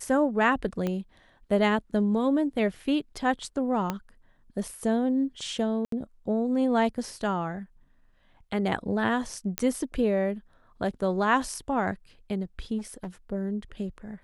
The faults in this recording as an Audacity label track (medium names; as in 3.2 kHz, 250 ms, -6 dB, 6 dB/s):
0.870000	0.870000	pop -17 dBFS
3.900000	3.900000	pop -14 dBFS
5.850000	5.920000	dropout 73 ms
9.580000	9.580000	pop -9 dBFS
12.780000	13.080000	clipped -31.5 dBFS